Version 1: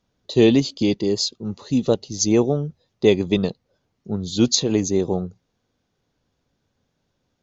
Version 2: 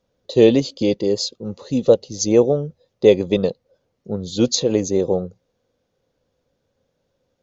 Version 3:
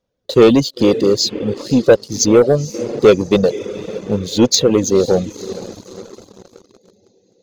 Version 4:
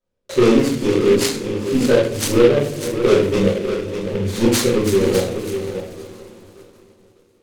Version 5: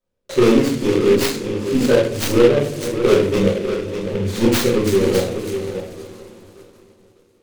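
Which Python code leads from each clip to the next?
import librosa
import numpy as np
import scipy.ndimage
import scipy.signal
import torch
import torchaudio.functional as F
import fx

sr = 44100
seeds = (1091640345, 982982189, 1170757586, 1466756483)

y1 = fx.peak_eq(x, sr, hz=520.0, db=13.5, octaves=0.41)
y1 = y1 * 10.0 ** (-1.5 / 20.0)
y2 = fx.echo_diffused(y1, sr, ms=500, feedback_pct=54, wet_db=-14.5)
y2 = fx.leveller(y2, sr, passes=2)
y2 = fx.dereverb_blind(y2, sr, rt60_s=0.55)
y3 = y2 + 10.0 ** (-9.0 / 20.0) * np.pad(y2, (int(600 * sr / 1000.0), 0))[:len(y2)]
y3 = fx.room_shoebox(y3, sr, seeds[0], volume_m3=100.0, walls='mixed', distance_m=2.7)
y3 = fx.noise_mod_delay(y3, sr, seeds[1], noise_hz=2100.0, depth_ms=0.042)
y3 = y3 * 10.0 ** (-14.5 / 20.0)
y4 = fx.tracing_dist(y3, sr, depth_ms=0.13)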